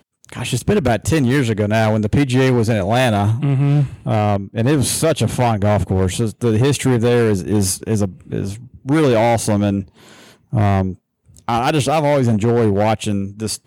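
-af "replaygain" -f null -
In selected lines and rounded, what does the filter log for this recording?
track_gain = -1.2 dB
track_peak = 0.348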